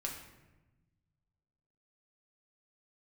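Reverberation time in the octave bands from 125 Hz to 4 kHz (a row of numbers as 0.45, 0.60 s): 2.2, 1.7, 1.2, 1.0, 0.95, 0.70 s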